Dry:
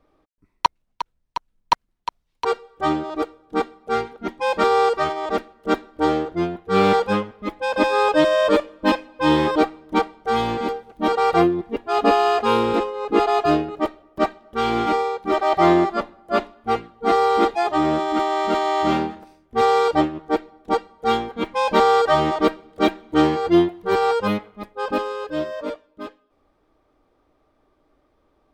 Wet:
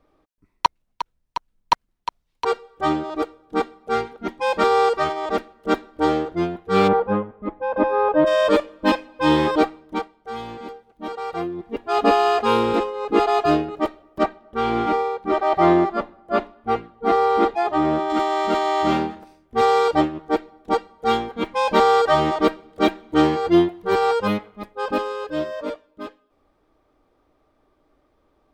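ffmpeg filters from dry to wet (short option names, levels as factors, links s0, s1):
-filter_complex "[0:a]asplit=3[s0][s1][s2];[s0]afade=t=out:st=6.87:d=0.02[s3];[s1]lowpass=1200,afade=t=in:st=6.87:d=0.02,afade=t=out:st=8.26:d=0.02[s4];[s2]afade=t=in:st=8.26:d=0.02[s5];[s3][s4][s5]amix=inputs=3:normalize=0,asettb=1/sr,asplit=3[s6][s7][s8];[s6]atrim=end=14.234[s9];[s7]atrim=start=14.23:end=18.1,asetpts=PTS-STARTPTS,afade=t=in:d=0.004:c=qsin,afade=t=out:st=3.866:d=0.004:c=qsin,highshelf=f=3800:g=-11[s10];[s8]atrim=start=18.096[s11];[s9][s10]acrossfade=d=0.004:c1=hsin:c2=qsin[s12];[s12][s11]acrossfade=d=0.004:c1=qsin:c2=hsin,asplit=3[s13][s14][s15];[s13]atrim=end=10.09,asetpts=PTS-STARTPTS,afade=t=out:st=9.66:d=0.43:silence=0.281838[s16];[s14]atrim=start=10.09:end=11.46,asetpts=PTS-STARTPTS,volume=0.282[s17];[s15]atrim=start=11.46,asetpts=PTS-STARTPTS,afade=t=in:d=0.43:silence=0.281838[s18];[s16][s17][s18]concat=n=3:v=0:a=1"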